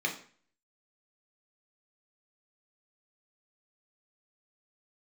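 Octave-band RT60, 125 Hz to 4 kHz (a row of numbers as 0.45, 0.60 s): 0.50, 0.50, 0.45, 0.45, 0.45, 0.40 s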